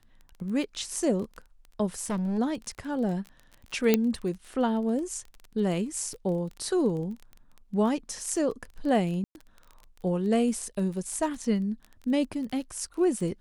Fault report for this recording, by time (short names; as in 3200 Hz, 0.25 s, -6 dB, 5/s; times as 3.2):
crackle 19/s -35 dBFS
1.99–2.39 clipped -26 dBFS
3.94 pop -7 dBFS
9.24–9.35 gap 0.111 s